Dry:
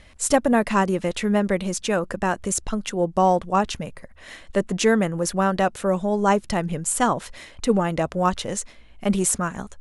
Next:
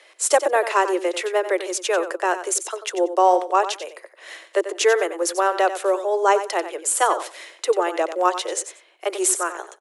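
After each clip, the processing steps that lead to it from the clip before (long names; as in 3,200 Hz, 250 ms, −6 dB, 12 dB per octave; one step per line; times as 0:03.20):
Butterworth high-pass 330 Hz 96 dB per octave
repeating echo 92 ms, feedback 17%, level −11.5 dB
level +2.5 dB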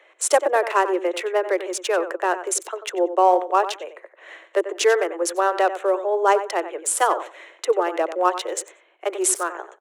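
adaptive Wiener filter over 9 samples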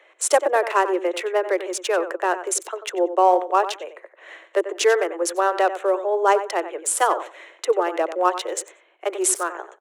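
no processing that can be heard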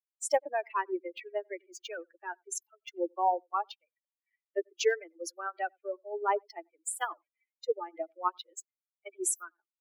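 spectral dynamics exaggerated over time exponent 3
level −6 dB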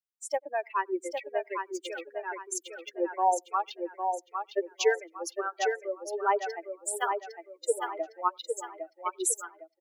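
automatic gain control gain up to 8.5 dB
on a send: repeating echo 807 ms, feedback 34%, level −5.5 dB
on the sum: level −6 dB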